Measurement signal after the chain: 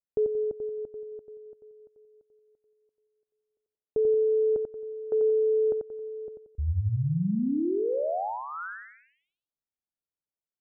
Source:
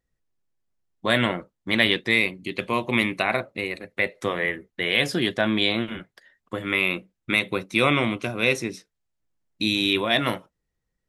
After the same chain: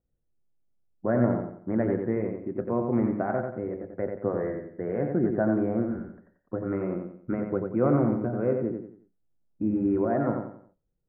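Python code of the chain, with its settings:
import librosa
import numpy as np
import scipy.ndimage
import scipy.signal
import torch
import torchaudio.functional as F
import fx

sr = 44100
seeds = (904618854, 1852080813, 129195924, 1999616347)

y = scipy.signal.sosfilt(scipy.signal.butter(8, 1400.0, 'lowpass', fs=sr, output='sos'), x)
y = fx.peak_eq(y, sr, hz=1100.0, db=-13.0, octaves=0.63)
y = fx.echo_feedback(y, sr, ms=90, feedback_pct=36, wet_db=-5.0)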